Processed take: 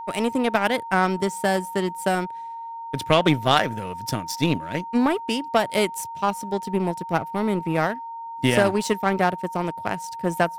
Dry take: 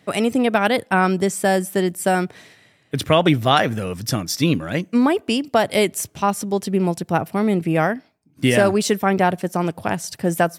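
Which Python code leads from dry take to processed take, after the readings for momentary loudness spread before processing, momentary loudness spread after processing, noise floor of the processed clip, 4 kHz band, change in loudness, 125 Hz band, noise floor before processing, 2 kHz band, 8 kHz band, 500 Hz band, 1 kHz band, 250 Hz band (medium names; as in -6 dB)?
7 LU, 10 LU, -35 dBFS, -3.0 dB, -4.0 dB, -5.0 dB, -58 dBFS, -3.0 dB, -7.0 dB, -4.0 dB, -1.5 dB, -5.0 dB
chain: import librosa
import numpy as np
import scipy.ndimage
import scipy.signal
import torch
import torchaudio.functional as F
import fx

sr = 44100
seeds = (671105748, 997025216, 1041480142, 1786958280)

y = fx.power_curve(x, sr, exponent=1.4)
y = y + 10.0 ** (-32.0 / 20.0) * np.sin(2.0 * np.pi * 920.0 * np.arange(len(y)) / sr)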